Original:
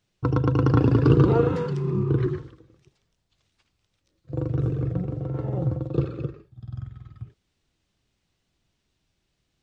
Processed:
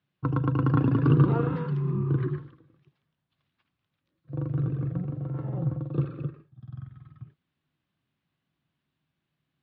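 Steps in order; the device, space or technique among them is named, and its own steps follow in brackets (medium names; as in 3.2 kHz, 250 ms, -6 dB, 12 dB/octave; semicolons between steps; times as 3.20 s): guitar cabinet (cabinet simulation 100–3700 Hz, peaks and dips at 150 Hz +9 dB, 260 Hz +5 dB, 440 Hz -5 dB, 1.1 kHz +5 dB, 1.6 kHz +4 dB); trim -6.5 dB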